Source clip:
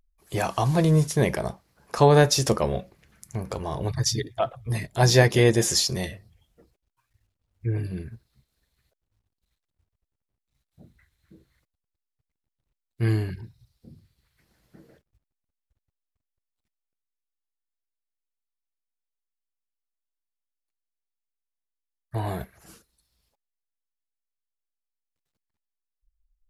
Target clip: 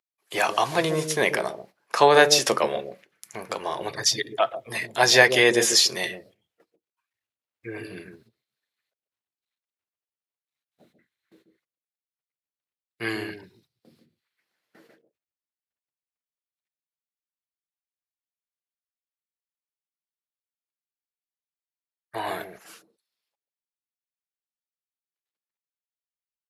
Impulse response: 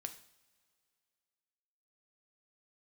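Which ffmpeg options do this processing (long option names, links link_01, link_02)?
-filter_complex "[0:a]agate=range=-15dB:threshold=-54dB:ratio=16:detection=peak,highpass=400,acrossover=split=650|3100[link_01][link_02][link_03];[link_01]aecho=1:1:140:0.562[link_04];[link_02]crystalizer=i=7.5:c=0[link_05];[link_04][link_05][link_03]amix=inputs=3:normalize=0,volume=2dB"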